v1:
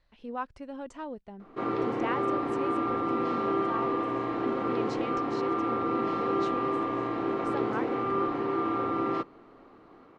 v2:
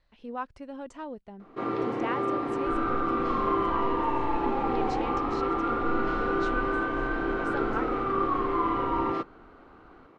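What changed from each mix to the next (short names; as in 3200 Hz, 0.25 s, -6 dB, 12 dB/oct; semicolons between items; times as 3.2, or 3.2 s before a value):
second sound: unmuted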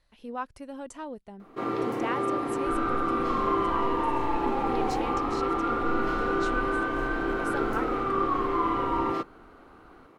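master: remove air absorption 110 m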